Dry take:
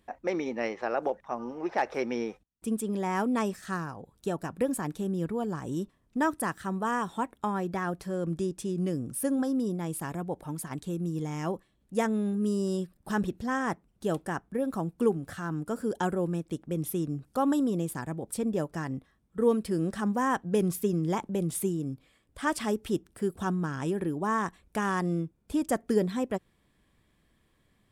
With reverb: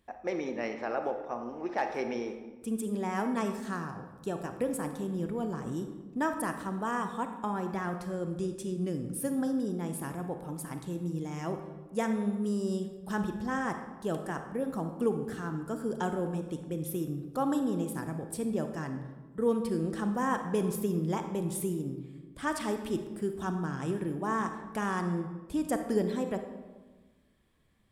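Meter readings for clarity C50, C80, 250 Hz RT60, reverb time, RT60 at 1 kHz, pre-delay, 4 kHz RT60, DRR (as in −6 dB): 7.5 dB, 9.5 dB, 1.6 s, 1.3 s, 1.2 s, 32 ms, 0.75 s, 6.5 dB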